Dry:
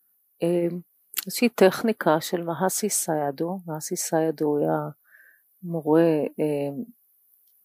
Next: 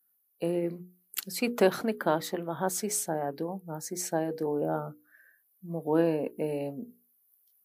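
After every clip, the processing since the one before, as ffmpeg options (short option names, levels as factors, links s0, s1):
-af "bandreject=f=60:t=h:w=6,bandreject=f=120:t=h:w=6,bandreject=f=180:t=h:w=6,bandreject=f=240:t=h:w=6,bandreject=f=300:t=h:w=6,bandreject=f=360:t=h:w=6,bandreject=f=420:t=h:w=6,bandreject=f=480:t=h:w=6,volume=0.501"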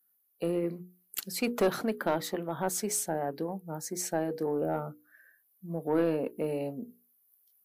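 -af "asoftclip=type=tanh:threshold=0.126"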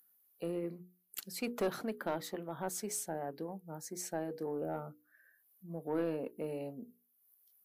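-af "acompressor=mode=upward:threshold=0.00251:ratio=2.5,volume=0.422"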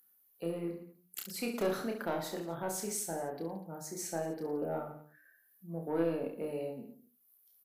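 -af "aecho=1:1:30|67.5|114.4|173|246.2:0.631|0.398|0.251|0.158|0.1"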